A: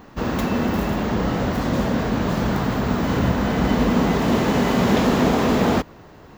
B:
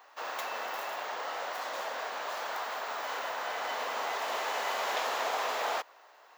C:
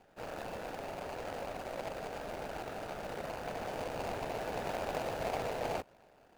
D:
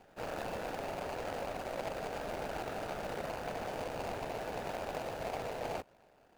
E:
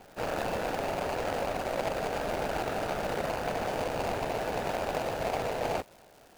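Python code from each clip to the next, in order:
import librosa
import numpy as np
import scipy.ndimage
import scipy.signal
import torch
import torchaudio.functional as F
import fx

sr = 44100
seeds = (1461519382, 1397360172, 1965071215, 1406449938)

y1 = scipy.signal.sosfilt(scipy.signal.butter(4, 640.0, 'highpass', fs=sr, output='sos'), x)
y1 = F.gain(torch.from_numpy(y1), -7.0).numpy()
y2 = scipy.signal.medfilt(y1, 41)
y2 = F.gain(torch.from_numpy(y2), 3.5).numpy()
y3 = fx.rider(y2, sr, range_db=3, speed_s=0.5)
y4 = fx.dmg_crackle(y3, sr, seeds[0], per_s=370.0, level_db=-53.0)
y4 = F.gain(torch.from_numpy(y4), 7.5).numpy()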